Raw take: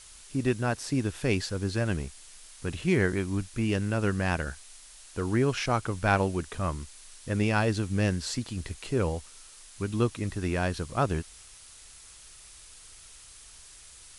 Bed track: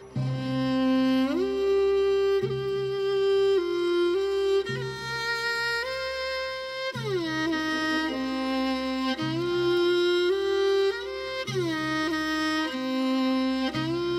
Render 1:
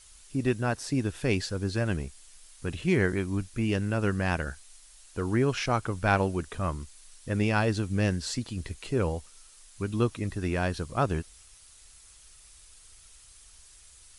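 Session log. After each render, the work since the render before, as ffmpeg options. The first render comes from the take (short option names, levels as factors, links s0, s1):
-af "afftdn=nr=6:nf=-51"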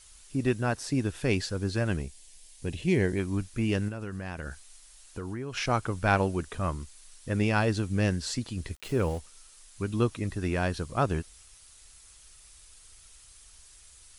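-filter_complex "[0:a]asettb=1/sr,asplit=3[s0][s1][s2];[s0]atrim=end=2.024[s3];[s1]atrim=start=2.02:end=3.19,asetpts=PTS-STARTPTS,afade=t=in:d=0.004:c=qsin,afade=t=out:st=1.166:d=0.004:c=qsin,equalizer=f=1300:w=2.5:g=-14[s4];[s2]atrim=start=3.186[s5];[s3][s4]acrossfade=d=0.004:c1=hsin:c2=qsin[s6];[s6][s5]acrossfade=d=0.004:c1=qsin:c2=hsin,asettb=1/sr,asplit=3[s7][s8][s9];[s7]atrim=end=3.884[s10];[s8]atrim=start=3.88:end=5.57,asetpts=PTS-STARTPTS,afade=t=in:d=0.004:c=qsin,afade=t=out:st=1.686:d=0.004:c=qsin,acompressor=threshold=0.0282:ratio=12:attack=3.2:release=140:knee=1:detection=peak[s11];[s9]atrim=start=5.566[s12];[s10][s11]acrossfade=d=0.004:c1=hsin:c2=qsin[s13];[s13][s12]acrossfade=d=0.004:c1=qsin:c2=hsin,asplit=3[s14][s15][s16];[s14]afade=t=out:st=8.74:d=0.02[s17];[s15]aeval=exprs='val(0)*gte(abs(val(0)),0.0075)':c=same,afade=t=in:st=8.74:d=0.02,afade=t=out:st=9.17:d=0.02[s18];[s16]afade=t=in:st=9.17:d=0.02[s19];[s17][s18][s19]amix=inputs=3:normalize=0"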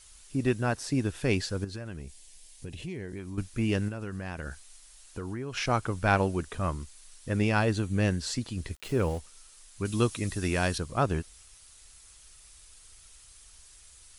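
-filter_complex "[0:a]asettb=1/sr,asplit=3[s0][s1][s2];[s0]atrim=end=1.644[s3];[s1]atrim=start=1.64:end=3.38,asetpts=PTS-STARTPTS,afade=t=in:d=0.004:c=qsin,afade=t=out:st=1.736:d=0.004:c=qsin,acompressor=threshold=0.0158:ratio=4:attack=3.2:release=140:knee=1:detection=peak[s4];[s2]atrim=start=3.376[s5];[s3][s4]acrossfade=d=0.004:c1=hsin:c2=qsin[s6];[s6][s5]acrossfade=d=0.004:c1=qsin:c2=hsin,asettb=1/sr,asplit=3[s7][s8][s9];[s7]atrim=end=7.644[s10];[s8]atrim=start=7.64:end=8.2,asetpts=PTS-STARTPTS,afade=t=in:d=0.004:c=qsin,afade=t=out:st=0.556:d=0.004:c=qsin,bandreject=f=5200:w=7.6[s11];[s9]atrim=start=8.196[s12];[s10][s11]acrossfade=d=0.004:c1=hsin:c2=qsin[s13];[s13][s12]acrossfade=d=0.004:c1=qsin:c2=hsin,asettb=1/sr,asplit=3[s14][s15][s16];[s14]atrim=end=9.854[s17];[s15]atrim=start=9.85:end=10.78,asetpts=PTS-STARTPTS,afade=t=in:d=0.004:c=qsin,afade=t=out:st=0.926:d=0.004:c=qsin,highshelf=f=3200:g=11[s18];[s16]atrim=start=10.776[s19];[s17][s18]acrossfade=d=0.004:c1=hsin:c2=qsin[s20];[s20][s19]acrossfade=d=0.004:c1=qsin:c2=hsin"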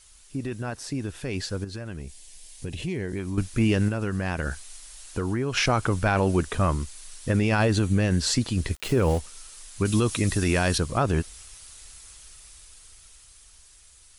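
-af "alimiter=limit=0.0841:level=0:latency=1:release=33,dynaudnorm=f=360:g=13:m=2.82"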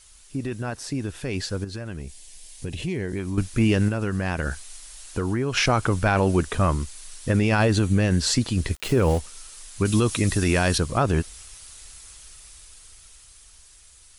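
-af "volume=1.26"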